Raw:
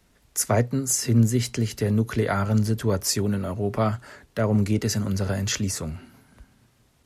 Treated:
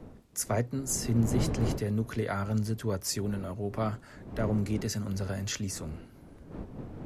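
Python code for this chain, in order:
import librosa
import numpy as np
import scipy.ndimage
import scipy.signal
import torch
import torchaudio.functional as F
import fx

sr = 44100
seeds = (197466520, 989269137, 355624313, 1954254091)

y = fx.dmg_wind(x, sr, seeds[0], corner_hz=280.0, level_db=-31.0)
y = y * librosa.db_to_amplitude(-8.0)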